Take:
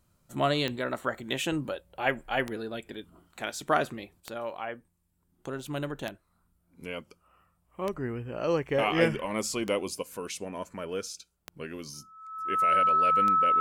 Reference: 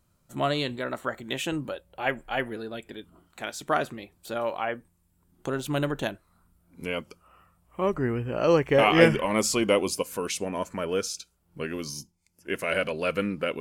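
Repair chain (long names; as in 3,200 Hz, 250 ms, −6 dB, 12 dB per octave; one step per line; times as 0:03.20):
click removal
notch filter 1,300 Hz, Q 30
level 0 dB, from 0:04.20 +6.5 dB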